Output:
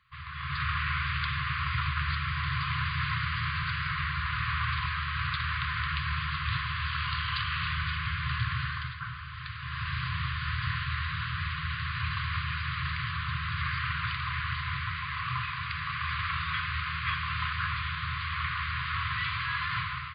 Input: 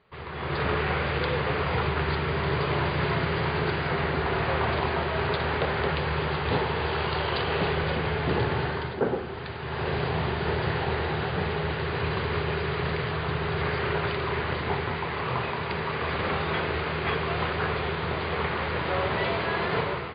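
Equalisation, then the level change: brick-wall FIR band-stop 150–1000 Hz; -1.0 dB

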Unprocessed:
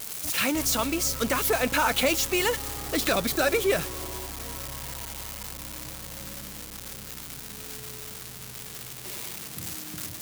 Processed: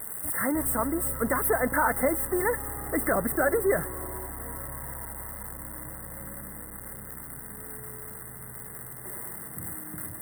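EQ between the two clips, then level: brick-wall FIR band-stop 2.1–7.9 kHz; 0.0 dB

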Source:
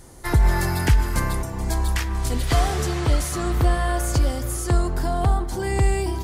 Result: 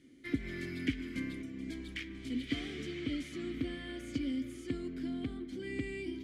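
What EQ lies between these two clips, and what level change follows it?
vowel filter i; +1.0 dB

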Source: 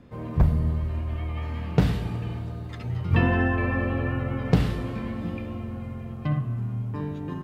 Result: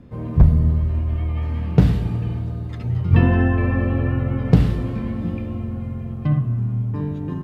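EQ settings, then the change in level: bass shelf 410 Hz +9 dB; -1.0 dB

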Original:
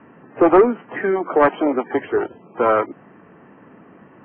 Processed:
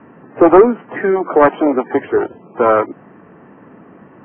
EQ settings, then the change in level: low-pass 2 kHz 6 dB/octave; +5.0 dB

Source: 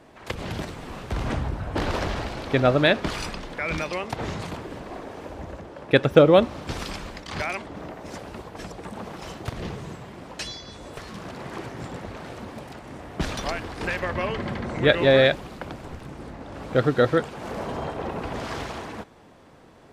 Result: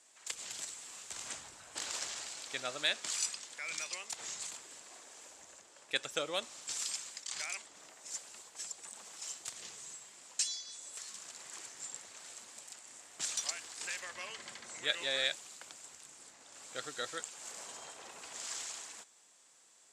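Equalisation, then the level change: band-pass filter 7.5 kHz, Q 4.8; +13.0 dB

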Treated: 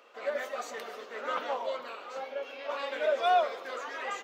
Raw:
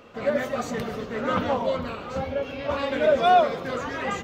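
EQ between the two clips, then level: Bessel high-pass 570 Hz, order 4; -5.5 dB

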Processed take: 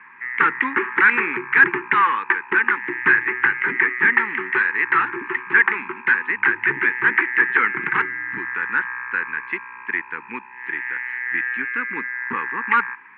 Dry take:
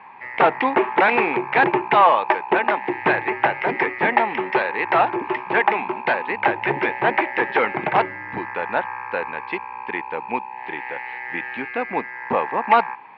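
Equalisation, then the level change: high-pass 310 Hz 6 dB/octave; Butterworth band-stop 650 Hz, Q 0.67; resonant low-pass 1.7 kHz, resonance Q 2.6; +1.0 dB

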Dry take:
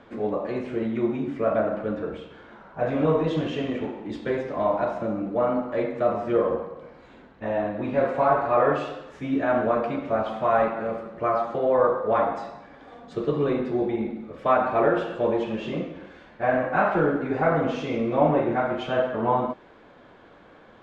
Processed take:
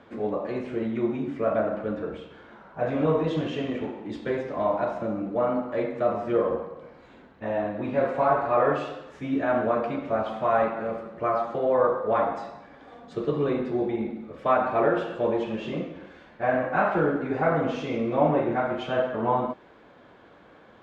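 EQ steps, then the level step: high-pass 41 Hz; -1.5 dB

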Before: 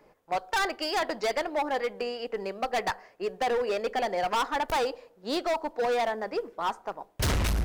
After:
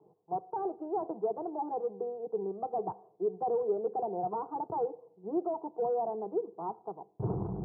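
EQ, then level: high-pass 85 Hz 24 dB/octave; inverse Chebyshev low-pass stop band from 4.2 kHz, stop band 80 dB; static phaser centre 380 Hz, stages 8; +1.5 dB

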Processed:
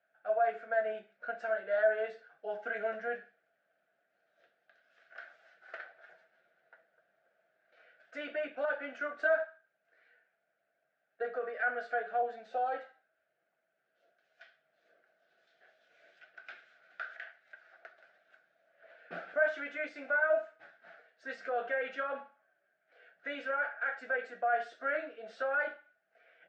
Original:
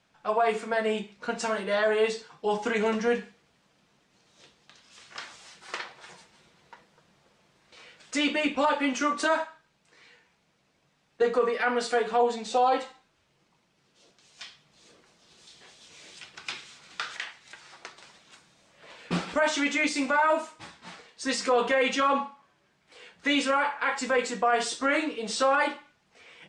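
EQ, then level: two resonant band-passes 1 kHz, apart 1.2 oct; distance through air 87 m; 0.0 dB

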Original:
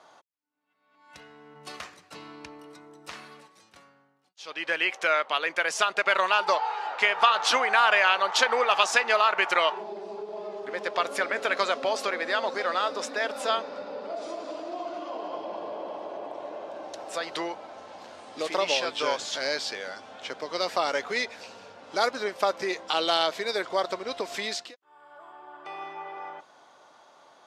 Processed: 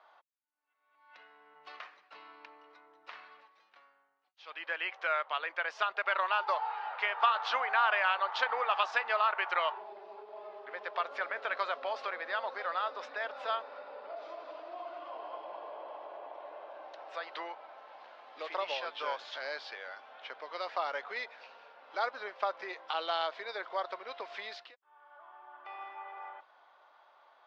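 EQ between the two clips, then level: band-pass 790–6600 Hz; distance through air 310 m; dynamic bell 2.3 kHz, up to -4 dB, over -41 dBFS, Q 1.4; -2.5 dB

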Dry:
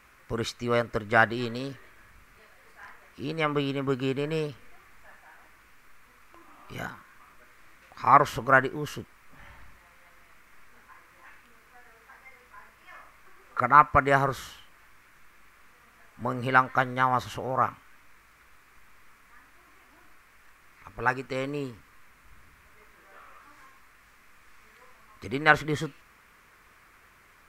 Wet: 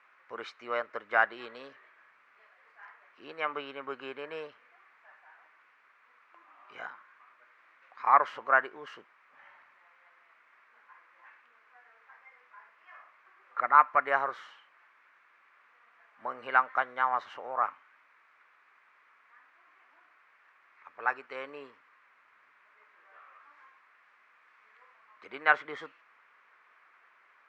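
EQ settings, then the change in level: band-pass 690–2300 Hz; -2.5 dB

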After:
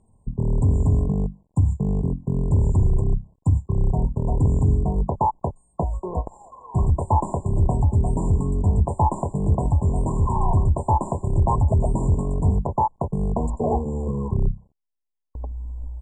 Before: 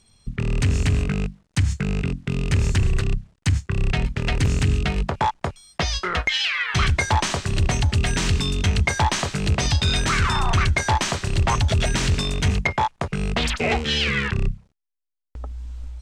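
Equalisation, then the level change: brick-wall FIR band-stop 1.1–7 kHz; distance through air 120 m; +1.5 dB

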